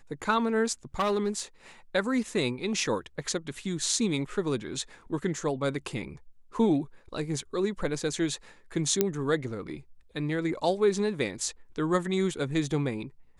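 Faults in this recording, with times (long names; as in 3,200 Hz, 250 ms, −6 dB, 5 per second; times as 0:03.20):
0:00.99–0:01.40: clipping −22 dBFS
0:09.01: click −8 dBFS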